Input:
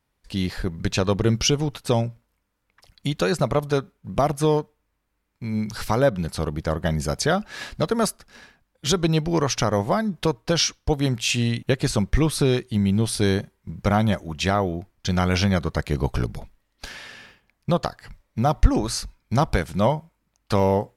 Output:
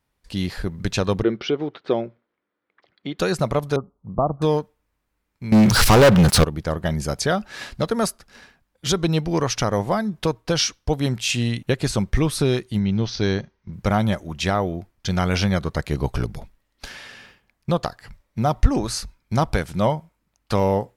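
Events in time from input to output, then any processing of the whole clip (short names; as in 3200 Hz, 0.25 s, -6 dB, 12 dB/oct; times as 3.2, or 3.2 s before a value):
1.23–3.19 speaker cabinet 270–3300 Hz, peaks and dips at 360 Hz +8 dB, 920 Hz -5 dB, 2700 Hz -7 dB
3.76–4.42 Chebyshev low-pass 1200 Hz, order 5
5.52–6.44 sample leveller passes 5
12.79–13.73 Chebyshev low-pass 6200 Hz, order 6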